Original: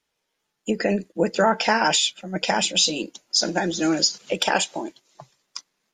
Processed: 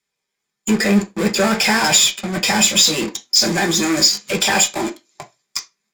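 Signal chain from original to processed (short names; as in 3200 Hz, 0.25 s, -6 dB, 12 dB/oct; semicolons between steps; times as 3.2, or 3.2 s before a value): in parallel at -3.5 dB: fuzz box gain 40 dB, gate -40 dBFS; on the sum: reverb RT60 0.20 s, pre-delay 3 ms, DRR 3 dB; gain -3 dB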